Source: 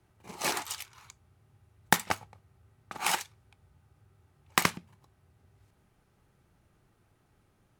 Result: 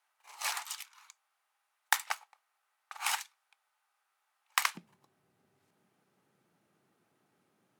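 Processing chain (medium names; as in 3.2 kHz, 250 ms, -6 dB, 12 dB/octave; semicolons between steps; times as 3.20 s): high-pass 840 Hz 24 dB/octave, from 4.75 s 170 Hz; trim -3 dB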